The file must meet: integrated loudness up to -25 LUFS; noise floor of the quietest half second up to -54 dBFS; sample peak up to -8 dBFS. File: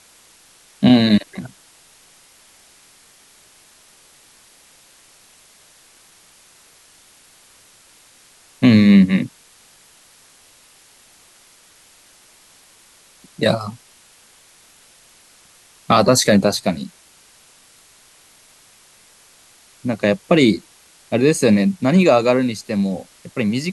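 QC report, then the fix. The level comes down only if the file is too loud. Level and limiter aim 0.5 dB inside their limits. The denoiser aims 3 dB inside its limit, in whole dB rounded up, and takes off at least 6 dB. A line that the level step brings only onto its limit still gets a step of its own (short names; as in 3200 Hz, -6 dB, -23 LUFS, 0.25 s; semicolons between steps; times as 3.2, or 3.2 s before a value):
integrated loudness -16.5 LUFS: fail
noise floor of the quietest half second -51 dBFS: fail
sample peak -3.0 dBFS: fail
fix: gain -9 dB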